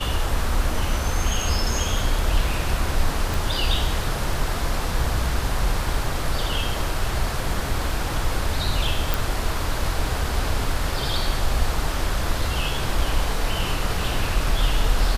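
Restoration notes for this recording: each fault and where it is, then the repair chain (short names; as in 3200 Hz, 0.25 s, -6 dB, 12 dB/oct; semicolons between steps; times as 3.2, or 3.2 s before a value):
3.34 pop
9.14 pop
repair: de-click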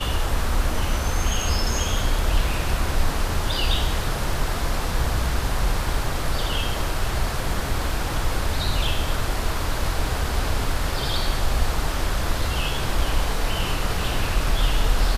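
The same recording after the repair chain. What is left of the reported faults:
3.34 pop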